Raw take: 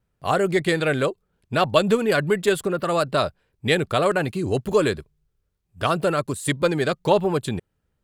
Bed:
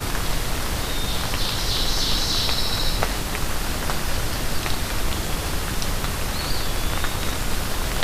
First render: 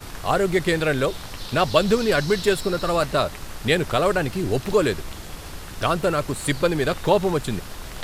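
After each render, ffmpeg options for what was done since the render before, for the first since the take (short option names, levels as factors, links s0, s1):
-filter_complex "[1:a]volume=0.282[s0];[0:a][s0]amix=inputs=2:normalize=0"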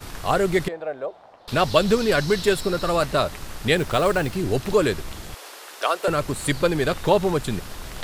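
-filter_complex "[0:a]asettb=1/sr,asplit=3[s0][s1][s2];[s0]atrim=end=0.684[s3];[s1]atrim=start=0.68:end=1.48,asetpts=PTS-STARTPTS,afade=t=in:d=0.004:c=qsin,afade=t=out:st=0.796:d=0.004:c=qsin,bandpass=f=690:t=q:w=3.4[s4];[s2]atrim=start=1.476[s5];[s3][s4]acrossfade=d=0.004:c1=hsin:c2=qsin[s6];[s6][s5]acrossfade=d=0.004:c1=qsin:c2=hsin,asettb=1/sr,asplit=3[s7][s8][s9];[s7]atrim=end=3.774[s10];[s8]atrim=start=3.77:end=4.36,asetpts=PTS-STARTPTS,afade=t=in:d=0.004:c=qsin,afade=t=out:st=0.586:d=0.004:c=qsin,acrusher=bits=6:mode=log:mix=0:aa=0.000001[s11];[s9]atrim=start=4.356[s12];[s10][s11]acrossfade=d=0.004:c1=hsin:c2=qsin[s13];[s13][s12]acrossfade=d=0.004:c1=qsin:c2=hsin,asettb=1/sr,asplit=3[s14][s15][s16];[s14]atrim=end=5.344[s17];[s15]atrim=start=5.34:end=6.08,asetpts=PTS-STARTPTS,afade=t=in:d=0.004:c=qsin,afade=t=out:st=0.736:d=0.004:c=qsin,highpass=f=420:w=0.5412,highpass=f=420:w=1.3066[s18];[s16]atrim=start=6.076[s19];[s17][s18]acrossfade=d=0.004:c1=hsin:c2=qsin[s20];[s20][s19]acrossfade=d=0.004:c1=qsin:c2=hsin"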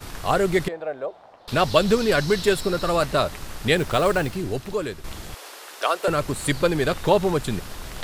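-filter_complex "[0:a]asplit=2[s0][s1];[s0]atrim=end=5.04,asetpts=PTS-STARTPTS,afade=t=out:st=4.2:d=0.84:c=qua:silence=0.354813[s2];[s1]atrim=start=5.04,asetpts=PTS-STARTPTS,afade=t=in:d=0.004:c=hsin:silence=0.354813[s3];[s2][s3]concat=n=2:v=0:a=1"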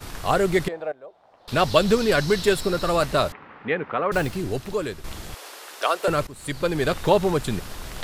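-filter_complex "[0:a]asettb=1/sr,asplit=3[s0][s1][s2];[s0]atrim=end=3.324[s3];[s1]atrim=start=3.32:end=4.12,asetpts=PTS-STARTPTS,afade=t=in:d=0.004:c=qsin,afade=t=out:st=0.796:d=0.004:c=qsin,highpass=270,equalizer=f=360:t=q:w=4:g=-7,equalizer=f=630:t=q:w=4:g=-8,equalizer=f=1600:t=q:w=4:g=-3,lowpass=f=2100:w=0.5412,lowpass=f=2100:w=1.3066[s4];[s2]atrim=start=4.116[s5];[s3][s4]acrossfade=d=0.004:c1=hsin:c2=qsin[s6];[s6][s5]acrossfade=d=0.004:c1=qsin:c2=hsin,asplit=3[s7][s8][s9];[s7]atrim=end=0.92,asetpts=PTS-STARTPTS,afade=t=out:st=0.916:d=0.004:c=hsin:silence=0.199526[s10];[s8]atrim=start=0.92:end=6.27,asetpts=PTS-STARTPTS,afade=t=in:d=0.67:c=qua:silence=0.199526,afade=t=out:st=5.346:d=0.004:c=hsin:silence=0.133352[s11];[s9]atrim=start=6.27,asetpts=PTS-STARTPTS,afade=t=in:d=0.62:silence=0.133352[s12];[s10][s11][s12]concat=n=3:v=0:a=1"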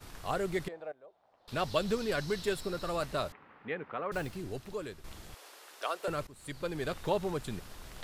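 -af "volume=0.237"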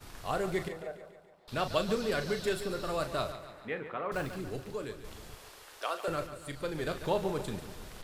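-filter_complex "[0:a]asplit=2[s0][s1];[s1]adelay=37,volume=0.335[s2];[s0][s2]amix=inputs=2:normalize=0,asplit=2[s3][s4];[s4]aecho=0:1:143|286|429|572|715|858:0.251|0.136|0.0732|0.0396|0.0214|0.0115[s5];[s3][s5]amix=inputs=2:normalize=0"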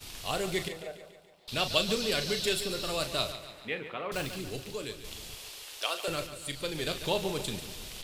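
-af "highshelf=f=2100:t=q:w=1.5:g=9"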